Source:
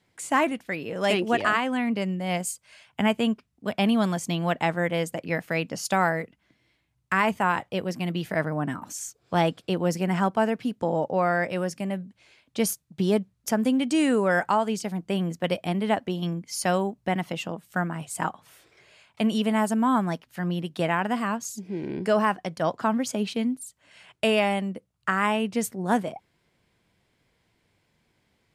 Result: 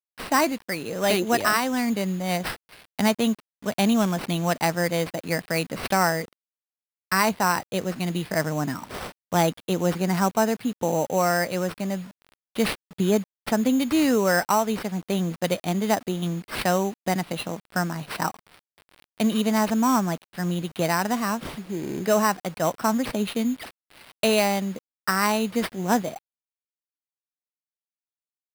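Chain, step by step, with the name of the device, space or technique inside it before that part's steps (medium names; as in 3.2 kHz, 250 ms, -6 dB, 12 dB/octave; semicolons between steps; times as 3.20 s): early 8-bit sampler (sample-rate reducer 6.8 kHz, jitter 0%; bit crusher 8-bit); trim +1.5 dB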